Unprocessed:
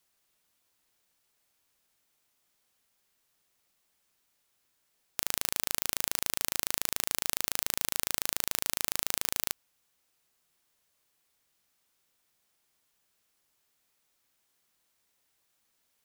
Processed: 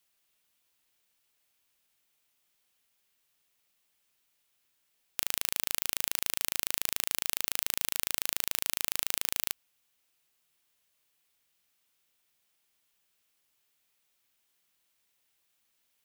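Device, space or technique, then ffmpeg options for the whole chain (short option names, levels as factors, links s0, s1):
presence and air boost: -af "equalizer=f=2800:t=o:w=1.1:g=5.5,highshelf=f=9500:g=5.5,volume=0.631"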